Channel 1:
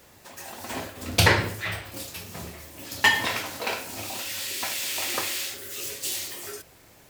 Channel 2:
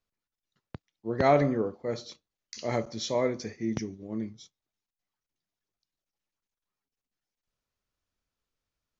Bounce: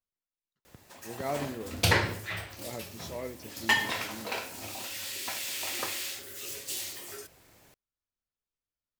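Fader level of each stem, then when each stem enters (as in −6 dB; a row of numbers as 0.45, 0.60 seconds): −5.5, −11.5 decibels; 0.65, 0.00 seconds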